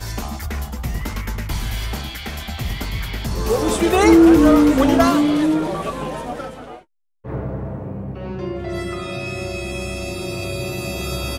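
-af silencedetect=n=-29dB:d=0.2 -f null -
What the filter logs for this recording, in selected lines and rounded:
silence_start: 6.75
silence_end: 7.25 | silence_duration: 0.50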